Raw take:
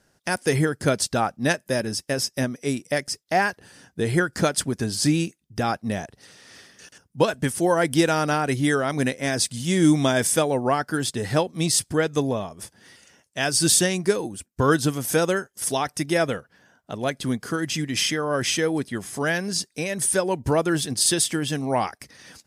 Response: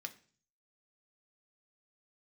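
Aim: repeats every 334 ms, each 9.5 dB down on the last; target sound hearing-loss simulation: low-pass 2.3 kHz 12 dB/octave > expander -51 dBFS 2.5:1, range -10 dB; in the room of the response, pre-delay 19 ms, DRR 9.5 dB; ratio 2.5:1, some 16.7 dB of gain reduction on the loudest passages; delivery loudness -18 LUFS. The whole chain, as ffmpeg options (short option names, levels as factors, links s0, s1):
-filter_complex "[0:a]acompressor=threshold=0.01:ratio=2.5,aecho=1:1:334|668|1002|1336:0.335|0.111|0.0365|0.012,asplit=2[s0][s1];[1:a]atrim=start_sample=2205,adelay=19[s2];[s1][s2]afir=irnorm=-1:irlink=0,volume=0.447[s3];[s0][s3]amix=inputs=2:normalize=0,lowpass=2300,agate=range=0.316:threshold=0.00282:ratio=2.5,volume=10"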